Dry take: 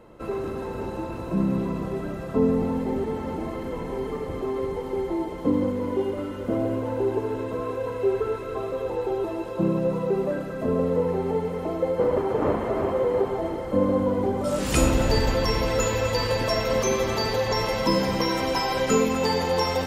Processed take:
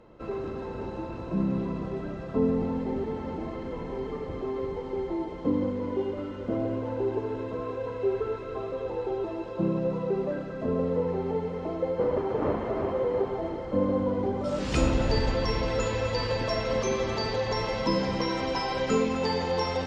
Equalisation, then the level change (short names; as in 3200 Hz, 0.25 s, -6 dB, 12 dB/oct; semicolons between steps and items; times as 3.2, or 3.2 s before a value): tape spacing loss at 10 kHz 27 dB; bell 5600 Hz +11.5 dB 2 oct; -3.0 dB